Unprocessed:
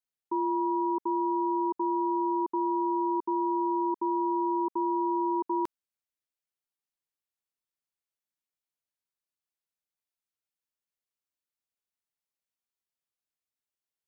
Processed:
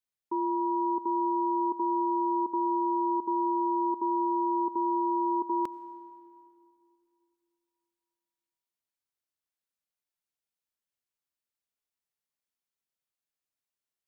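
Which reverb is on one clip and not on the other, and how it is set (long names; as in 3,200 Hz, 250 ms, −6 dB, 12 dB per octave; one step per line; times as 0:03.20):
comb and all-pass reverb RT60 2.8 s, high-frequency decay 0.8×, pre-delay 50 ms, DRR 17 dB
level −1 dB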